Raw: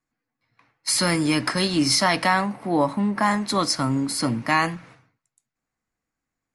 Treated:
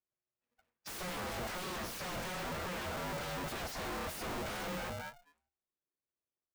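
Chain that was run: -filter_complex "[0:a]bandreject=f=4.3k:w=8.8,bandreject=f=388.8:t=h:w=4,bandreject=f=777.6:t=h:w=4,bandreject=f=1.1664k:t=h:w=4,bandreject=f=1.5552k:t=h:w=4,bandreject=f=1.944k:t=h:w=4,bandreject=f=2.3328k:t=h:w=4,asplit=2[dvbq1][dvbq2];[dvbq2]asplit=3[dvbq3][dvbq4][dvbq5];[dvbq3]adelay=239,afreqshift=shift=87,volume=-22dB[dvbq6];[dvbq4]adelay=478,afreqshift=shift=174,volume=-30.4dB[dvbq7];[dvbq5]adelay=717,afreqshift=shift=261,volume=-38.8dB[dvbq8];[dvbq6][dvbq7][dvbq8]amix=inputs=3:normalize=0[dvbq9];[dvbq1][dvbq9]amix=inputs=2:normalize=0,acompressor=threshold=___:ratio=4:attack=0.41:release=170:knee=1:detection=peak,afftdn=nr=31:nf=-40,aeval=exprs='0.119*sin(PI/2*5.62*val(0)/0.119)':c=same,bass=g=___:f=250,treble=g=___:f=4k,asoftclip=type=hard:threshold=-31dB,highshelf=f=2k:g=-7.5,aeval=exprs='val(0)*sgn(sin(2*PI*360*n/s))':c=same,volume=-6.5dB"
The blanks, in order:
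-24dB, 2, -3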